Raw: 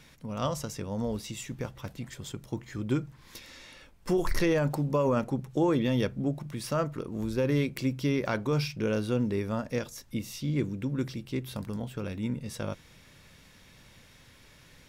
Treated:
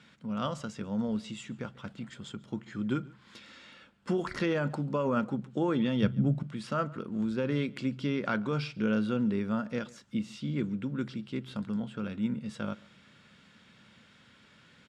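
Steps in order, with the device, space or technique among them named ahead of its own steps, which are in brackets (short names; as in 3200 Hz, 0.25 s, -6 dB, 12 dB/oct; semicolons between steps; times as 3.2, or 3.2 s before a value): 6.02–6.43 bell 120 Hz +14 dB 1 oct; car door speaker (speaker cabinet 110–7700 Hz, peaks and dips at 210 Hz +10 dB, 1400 Hz +9 dB, 3100 Hz +5 dB, 5900 Hz -8 dB); outdoor echo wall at 24 m, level -23 dB; gain -4.5 dB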